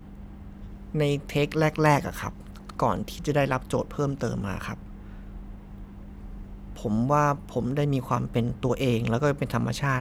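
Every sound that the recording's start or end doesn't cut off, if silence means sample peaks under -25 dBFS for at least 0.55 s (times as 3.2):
0.95–4.74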